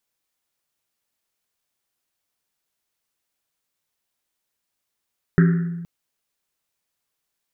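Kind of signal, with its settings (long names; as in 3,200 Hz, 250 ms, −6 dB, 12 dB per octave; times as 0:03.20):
drum after Risset length 0.47 s, pitch 170 Hz, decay 1.40 s, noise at 1,600 Hz, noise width 570 Hz, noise 10%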